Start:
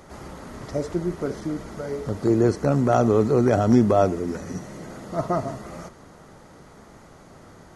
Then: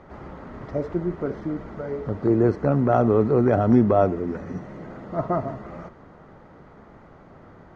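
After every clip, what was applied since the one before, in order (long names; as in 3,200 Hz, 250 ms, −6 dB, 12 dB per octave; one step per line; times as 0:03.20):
low-pass filter 2,100 Hz 12 dB per octave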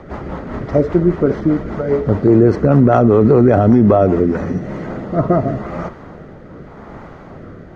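rotating-speaker cabinet horn 5 Hz, later 0.85 Hz, at 0:04.02
boost into a limiter +15.5 dB
level −1 dB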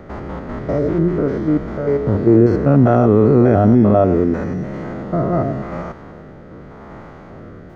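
spectrum averaged block by block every 100 ms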